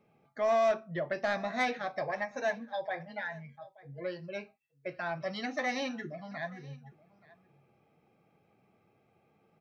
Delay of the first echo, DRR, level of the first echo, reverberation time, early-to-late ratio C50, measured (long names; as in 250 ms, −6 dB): 877 ms, no reverb audible, −22.0 dB, no reverb audible, no reverb audible